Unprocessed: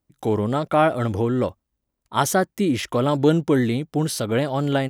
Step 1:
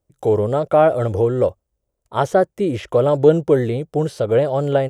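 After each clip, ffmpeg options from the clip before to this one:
ffmpeg -i in.wav -filter_complex "[0:a]highshelf=frequency=4600:gain=-8,acrossover=split=3900[link_01][link_02];[link_02]acompressor=threshold=-51dB:ratio=4:attack=1:release=60[link_03];[link_01][link_03]amix=inputs=2:normalize=0,equalizer=frequency=250:width_type=o:width=1:gain=-11,equalizer=frequency=500:width_type=o:width=1:gain=8,equalizer=frequency=1000:width_type=o:width=1:gain=-5,equalizer=frequency=2000:width_type=o:width=1:gain=-6,equalizer=frequency=4000:width_type=o:width=1:gain=-5,equalizer=frequency=8000:width_type=o:width=1:gain=5,volume=4.5dB" out.wav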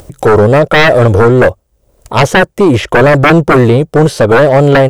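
ffmpeg -i in.wav -af "aeval=exprs='0.891*sin(PI/2*4.47*val(0)/0.891)':channel_layout=same,aeval=exprs='0.891*(cos(1*acos(clip(val(0)/0.891,-1,1)))-cos(1*PI/2))+0.0158*(cos(8*acos(clip(val(0)/0.891,-1,1)))-cos(8*PI/2))':channel_layout=same,acompressor=mode=upward:threshold=-16dB:ratio=2.5,volume=-1dB" out.wav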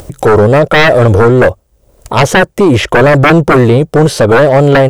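ffmpeg -i in.wav -af "alimiter=level_in=5.5dB:limit=-1dB:release=50:level=0:latency=1,volume=-1dB" out.wav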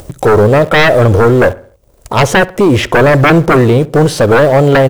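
ffmpeg -i in.wav -filter_complex "[0:a]asplit=2[link_01][link_02];[link_02]adelay=67,lowpass=frequency=2100:poles=1,volume=-18dB,asplit=2[link_03][link_04];[link_04]adelay=67,lowpass=frequency=2100:poles=1,volume=0.45,asplit=2[link_05][link_06];[link_06]adelay=67,lowpass=frequency=2100:poles=1,volume=0.45,asplit=2[link_07][link_08];[link_08]adelay=67,lowpass=frequency=2100:poles=1,volume=0.45[link_09];[link_01][link_03][link_05][link_07][link_09]amix=inputs=5:normalize=0,asplit=2[link_10][link_11];[link_11]acrusher=bits=4:dc=4:mix=0:aa=0.000001,volume=-11dB[link_12];[link_10][link_12]amix=inputs=2:normalize=0,volume=-3.5dB" out.wav

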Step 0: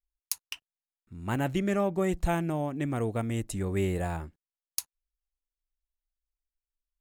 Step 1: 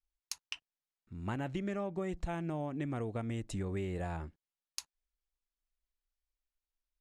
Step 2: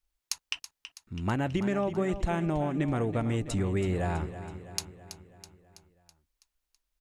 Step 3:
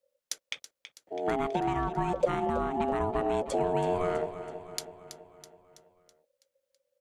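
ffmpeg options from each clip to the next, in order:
ffmpeg -i in.wav -af "lowpass=6100,acompressor=threshold=-32dB:ratio=6,volume=-1.5dB" out.wav
ffmpeg -i in.wav -af "aecho=1:1:327|654|981|1308|1635|1962:0.251|0.141|0.0788|0.0441|0.0247|0.0138,volume=8dB" out.wav
ffmpeg -i in.wav -af "lowshelf=frequency=160:gain=6.5,aeval=exprs='val(0)*sin(2*PI*540*n/s)':channel_layout=same" out.wav

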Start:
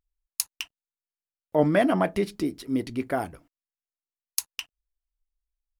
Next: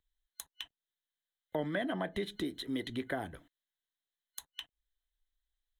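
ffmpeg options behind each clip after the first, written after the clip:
ffmpeg -i in.wav -filter_complex "[0:a]acrossover=split=350|1000[link_01][link_02][link_03];[link_01]acompressor=threshold=-34dB:ratio=4[link_04];[link_02]acompressor=threshold=-32dB:ratio=4[link_05];[link_03]acompressor=threshold=-43dB:ratio=4[link_06];[link_04][link_05][link_06]amix=inputs=3:normalize=0,superequalizer=11b=2.82:13b=3.98:14b=0.398,asplit=2[link_07][link_08];[link_08]acompressor=threshold=-36dB:ratio=6,volume=-3dB[link_09];[link_07][link_09]amix=inputs=2:normalize=0,volume=-7dB" out.wav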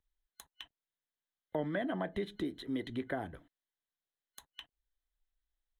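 ffmpeg -i in.wav -af "highshelf=frequency=3000:gain=-10.5" out.wav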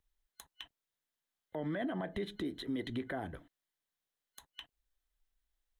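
ffmpeg -i in.wav -af "alimiter=level_in=8dB:limit=-24dB:level=0:latency=1:release=59,volume=-8dB,volume=3dB" out.wav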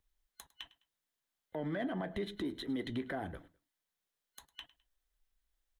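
ffmpeg -i in.wav -filter_complex "[0:a]asplit=2[link_01][link_02];[link_02]asoftclip=type=tanh:threshold=-38dB,volume=-10dB[link_03];[link_01][link_03]amix=inputs=2:normalize=0,flanger=delay=2.7:depth=2.4:regen=-82:speed=0.85:shape=triangular,aecho=1:1:104|208:0.1|0.03,volume=3dB" out.wav

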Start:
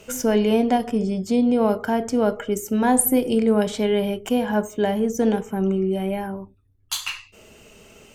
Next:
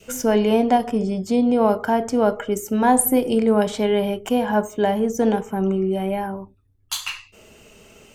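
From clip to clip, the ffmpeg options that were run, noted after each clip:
ffmpeg -i in.wav -af "adynamicequalizer=threshold=0.0224:dfrequency=890:dqfactor=1.1:tfrequency=890:tqfactor=1.1:attack=5:release=100:ratio=0.375:range=2.5:mode=boostabove:tftype=bell" out.wav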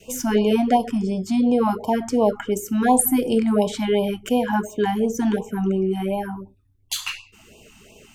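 ffmpeg -i in.wav -af "afftfilt=real='re*(1-between(b*sr/1024,450*pow(1700/450,0.5+0.5*sin(2*PI*2.8*pts/sr))/1.41,450*pow(1700/450,0.5+0.5*sin(2*PI*2.8*pts/sr))*1.41))':imag='im*(1-between(b*sr/1024,450*pow(1700/450,0.5+0.5*sin(2*PI*2.8*pts/sr))/1.41,450*pow(1700/450,0.5+0.5*sin(2*PI*2.8*pts/sr))*1.41))':win_size=1024:overlap=0.75" out.wav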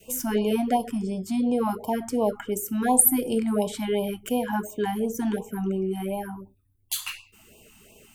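ffmpeg -i in.wav -af "aexciter=amount=3.9:drive=2.9:freq=8500,volume=-5.5dB" out.wav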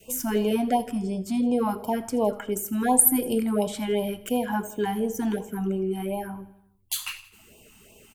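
ffmpeg -i in.wav -af "aecho=1:1:82|164|246|328|410:0.112|0.0651|0.0377|0.0219|0.0127" out.wav

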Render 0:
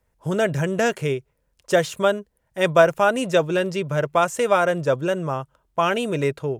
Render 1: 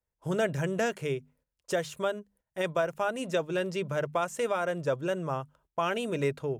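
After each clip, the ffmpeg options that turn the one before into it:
ffmpeg -i in.wav -af "bandreject=frequency=50:width_type=h:width=6,bandreject=frequency=100:width_type=h:width=6,bandreject=frequency=150:width_type=h:width=6,bandreject=frequency=200:width_type=h:width=6,bandreject=frequency=250:width_type=h:width=6,alimiter=limit=-12dB:level=0:latency=1:release=459,agate=range=-13dB:threshold=-57dB:ratio=16:detection=peak,volume=-6dB" out.wav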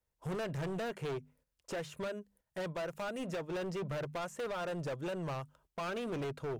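ffmpeg -i in.wav -filter_complex "[0:a]acrossover=split=2700[link_01][link_02];[link_01]alimiter=level_in=2dB:limit=-24dB:level=0:latency=1:release=479,volume=-2dB[link_03];[link_02]acompressor=threshold=-55dB:ratio=5[link_04];[link_03][link_04]amix=inputs=2:normalize=0,asoftclip=type=hard:threshold=-37dB,volume=2dB" out.wav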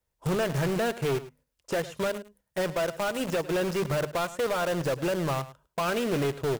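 ffmpeg -i in.wav -filter_complex "[0:a]asplit=2[link_01][link_02];[link_02]acrusher=bits=5:mix=0:aa=0.000001,volume=-4dB[link_03];[link_01][link_03]amix=inputs=2:normalize=0,aecho=1:1:105:0.158,volume=4.5dB" out.wav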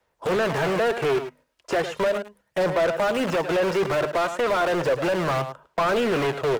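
ffmpeg -i in.wav -filter_complex "[0:a]aphaser=in_gain=1:out_gain=1:delay=3.2:decay=0.33:speed=0.35:type=sinusoidal,acrossover=split=310|1400|2400[link_01][link_02][link_03][link_04];[link_01]aeval=exprs='0.0422*(abs(mod(val(0)/0.0422+3,4)-2)-1)':channel_layout=same[link_05];[link_05][link_02][link_03][link_04]amix=inputs=4:normalize=0,asplit=2[link_06][link_07];[link_07]highpass=frequency=720:poles=1,volume=23dB,asoftclip=type=tanh:threshold=-13.5dB[link_08];[link_06][link_08]amix=inputs=2:normalize=0,lowpass=frequency=1500:poles=1,volume=-6dB" out.wav

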